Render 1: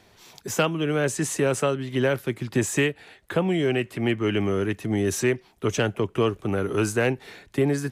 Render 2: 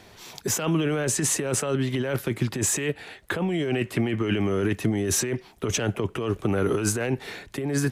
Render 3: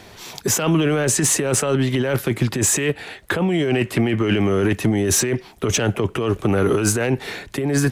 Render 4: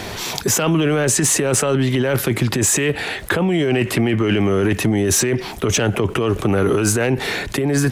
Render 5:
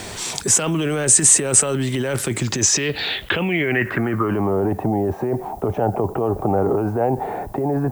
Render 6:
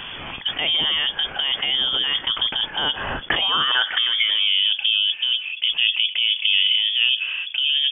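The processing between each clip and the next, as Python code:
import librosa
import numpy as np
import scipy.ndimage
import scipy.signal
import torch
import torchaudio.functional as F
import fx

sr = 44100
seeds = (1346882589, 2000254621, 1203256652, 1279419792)

y1 = fx.over_compress(x, sr, threshold_db=-27.0, ratio=-1.0)
y1 = y1 * librosa.db_to_amplitude(2.5)
y2 = 10.0 ** (-14.5 / 20.0) * np.tanh(y1 / 10.0 ** (-14.5 / 20.0))
y2 = y2 * librosa.db_to_amplitude(7.0)
y3 = fx.env_flatten(y2, sr, amount_pct=50)
y4 = fx.filter_sweep_lowpass(y3, sr, from_hz=8500.0, to_hz=790.0, start_s=2.3, end_s=4.62, q=5.1)
y4 = fx.dmg_noise_colour(y4, sr, seeds[0], colour='violet', level_db=-47.0)
y4 = y4 * librosa.db_to_amplitude(-4.5)
y5 = fx.freq_invert(y4, sr, carrier_hz=3400)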